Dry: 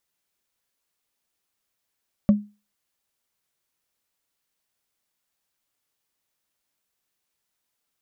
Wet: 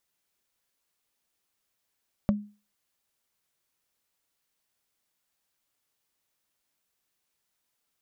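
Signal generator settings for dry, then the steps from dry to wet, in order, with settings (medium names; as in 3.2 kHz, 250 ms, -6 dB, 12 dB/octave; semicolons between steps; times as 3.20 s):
wood hit, lowest mode 207 Hz, decay 0.29 s, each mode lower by 11.5 dB, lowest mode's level -9 dB
compression 6:1, threshold -23 dBFS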